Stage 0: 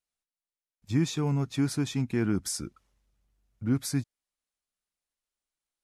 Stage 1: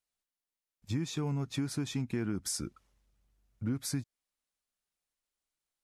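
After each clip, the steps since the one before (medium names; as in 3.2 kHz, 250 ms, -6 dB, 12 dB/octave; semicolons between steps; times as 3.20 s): compression, threshold -30 dBFS, peak gain reduction 9.5 dB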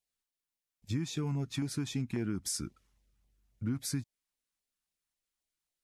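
LFO notch saw down 3.7 Hz 380–1600 Hz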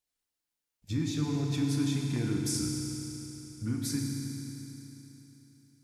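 FDN reverb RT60 3.5 s, high-frequency decay 1×, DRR -0.5 dB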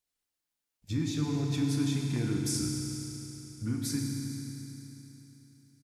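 delay 462 ms -20.5 dB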